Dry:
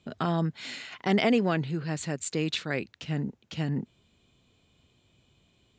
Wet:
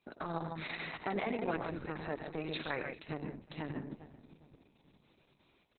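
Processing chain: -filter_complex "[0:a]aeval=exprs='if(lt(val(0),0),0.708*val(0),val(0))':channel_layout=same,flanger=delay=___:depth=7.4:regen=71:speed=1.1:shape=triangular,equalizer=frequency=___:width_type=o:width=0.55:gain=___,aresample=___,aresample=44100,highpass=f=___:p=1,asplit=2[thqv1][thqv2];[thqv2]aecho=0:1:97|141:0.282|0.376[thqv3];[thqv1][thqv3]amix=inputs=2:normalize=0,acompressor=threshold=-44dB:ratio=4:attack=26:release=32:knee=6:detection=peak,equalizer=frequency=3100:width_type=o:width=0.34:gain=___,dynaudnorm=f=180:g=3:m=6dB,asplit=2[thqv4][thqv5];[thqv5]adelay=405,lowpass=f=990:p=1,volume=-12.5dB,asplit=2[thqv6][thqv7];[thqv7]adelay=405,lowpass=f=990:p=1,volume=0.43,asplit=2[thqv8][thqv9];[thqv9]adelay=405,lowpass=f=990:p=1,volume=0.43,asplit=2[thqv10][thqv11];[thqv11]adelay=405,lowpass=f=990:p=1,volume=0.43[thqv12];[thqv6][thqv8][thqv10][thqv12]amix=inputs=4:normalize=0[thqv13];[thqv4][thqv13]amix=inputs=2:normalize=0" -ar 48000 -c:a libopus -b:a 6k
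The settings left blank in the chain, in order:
0.7, 880, 3, 11025, 390, -12.5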